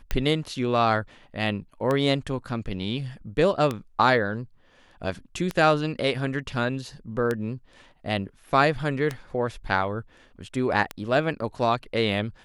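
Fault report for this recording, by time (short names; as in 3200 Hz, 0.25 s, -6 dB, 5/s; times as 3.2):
tick 33 1/3 rpm -13 dBFS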